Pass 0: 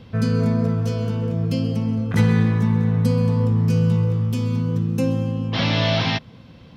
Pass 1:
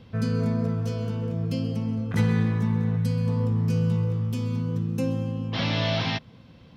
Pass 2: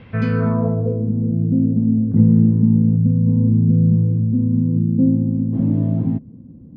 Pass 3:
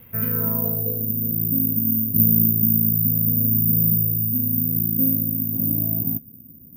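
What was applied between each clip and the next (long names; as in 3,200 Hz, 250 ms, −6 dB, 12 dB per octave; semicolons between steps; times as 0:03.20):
gain on a spectral selection 0:02.97–0:03.27, 210–1,400 Hz −6 dB; level −5.5 dB
low-pass filter sweep 2,200 Hz → 270 Hz, 0:00.28–0:01.10; level +6.5 dB
bad sample-rate conversion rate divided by 3×, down none, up zero stuff; level −9.5 dB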